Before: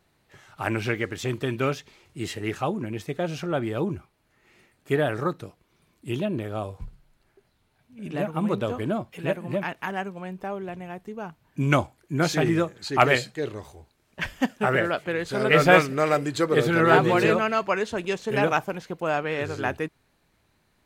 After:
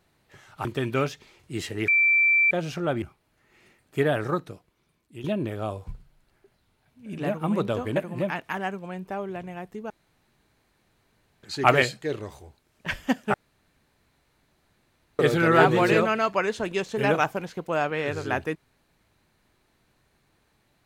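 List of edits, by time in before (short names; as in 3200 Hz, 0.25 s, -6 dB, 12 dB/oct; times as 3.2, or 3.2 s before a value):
0.65–1.31 cut
2.54–3.17 bleep 2340 Hz -16.5 dBFS
3.68–3.95 cut
5.22–6.17 fade out, to -12 dB
8.89–9.29 cut
11.23–12.76 room tone
14.67–16.52 room tone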